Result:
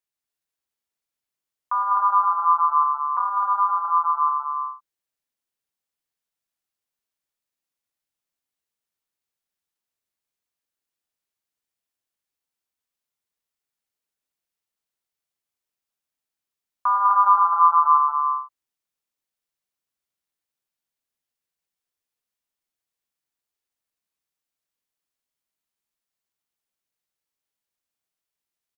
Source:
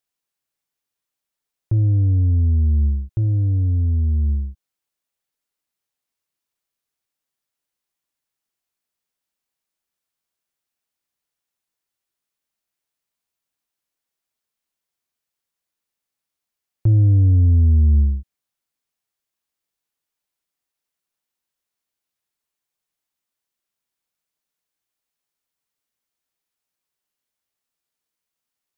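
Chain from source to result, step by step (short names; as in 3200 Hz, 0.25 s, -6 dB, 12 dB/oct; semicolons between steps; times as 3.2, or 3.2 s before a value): loudspeakers at several distances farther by 37 m -9 dB, 68 m -7 dB, 88 m -4 dB; ring modulator 1100 Hz; gain -3 dB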